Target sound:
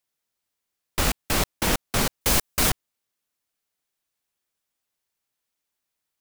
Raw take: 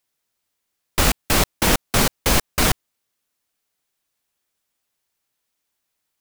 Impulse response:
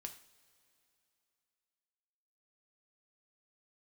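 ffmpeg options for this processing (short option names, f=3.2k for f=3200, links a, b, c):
-filter_complex "[0:a]asettb=1/sr,asplit=3[a][b][c];[a]atrim=end=2.214[d];[b]atrim=start=2.21:end=2.7,asetpts=PTS-STARTPTS,afade=t=in:d=0.004:c=qsin,afade=t=out:st=0.486:d=0.004:c=qsin,highshelf=f=5.2k:g=6.5[e];[c]atrim=start=2.696[f];[d][e]acrossfade=d=0.004:c1=hsin:c2=qsin[g];[g][f]acrossfade=d=0.004:c1=qsin:c2=hsin,volume=-5.5dB"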